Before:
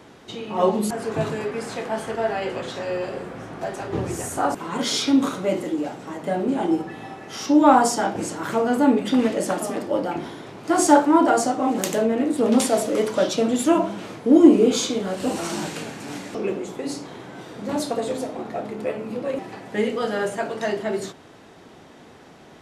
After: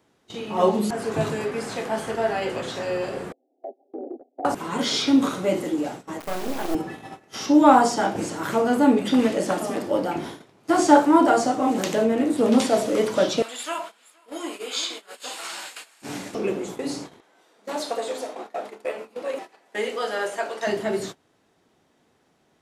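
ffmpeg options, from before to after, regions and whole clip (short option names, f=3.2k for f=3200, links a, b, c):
-filter_complex "[0:a]asettb=1/sr,asplit=3[a][b][c];[a]atrim=end=3.324[d];[b]atrim=start=3.32:end=4.45,asetpts=PTS-STARTPTS,afade=t=in:d=0.004:c=qsin,afade=t=out:st=1.126:d=0.004:c=qsin,agate=range=-14dB:threshold=-29dB:ratio=16:release=100:detection=peak,asuperpass=centerf=440:order=20:qfactor=0.79,acompressor=threshold=-29dB:ratio=6:attack=3.2:release=140:knee=1:detection=peak[e];[c]atrim=start=4.446[f];[d][e]acrossfade=d=0.004:c1=hsin:c2=qsin[g];[g][f]acrossfade=d=0.004:c1=qsin:c2=hsin,asettb=1/sr,asplit=3[h][i][j];[h]atrim=end=6.204[k];[i]atrim=start=6.2:end=6.75,asetpts=PTS-STARTPTS,afade=t=in:d=0.004:c=qsin,afade=t=out:st=0.546:d=0.004:c=qsin,acrusher=bits=3:dc=4:mix=0:aa=0.000001,equalizer=f=63:t=o:w=2.7:g=-13[l];[j]atrim=start=6.746[m];[k][l]acrossfade=d=0.004:c1=hsin:c2=qsin[n];[n][m]acrossfade=d=0.004:c1=qsin:c2=hsin,asettb=1/sr,asplit=3[o][p][q];[o]atrim=end=13.424[r];[p]atrim=start=13.42:end=16.02,asetpts=PTS-STARTPTS,afade=t=in:d=0.004:c=qsin,afade=t=out:st=2.596:d=0.004:c=qsin,highpass=1.2k,bandreject=f=5.9k:w=6.4,aecho=1:1:469:0.251,atrim=end_sample=114660[s];[q]atrim=start=16.016[t];[r][s]acrossfade=d=0.004:c1=hsin:c2=qsin[u];[u][t]acrossfade=d=0.004:c1=qsin:c2=hsin,asettb=1/sr,asplit=3[v][w][x];[v]atrim=end=17.204[y];[w]atrim=start=17.2:end=20.67,asetpts=PTS-STARTPTS,afade=t=in:d=0.004:c=qsin,afade=t=out:st=3.466:d=0.004:c=qsin,highpass=480,adynamicequalizer=threshold=0.00224:dfrequency=7800:dqfactor=0.7:tfrequency=7800:tqfactor=0.7:attack=5:release=100:ratio=0.375:range=2.5:mode=cutabove:tftype=highshelf[z];[x]atrim=start=20.666[aa];[y][z]acrossfade=d=0.004:c1=hsin:c2=qsin[ab];[ab][aa]acrossfade=d=0.004:c1=qsin:c2=hsin,agate=range=-18dB:threshold=-35dB:ratio=16:detection=peak,acrossover=split=5400[ac][ad];[ad]acompressor=threshold=-46dB:ratio=4:attack=1:release=60[ae];[ac][ae]amix=inputs=2:normalize=0,highshelf=f=6.8k:g=8.5"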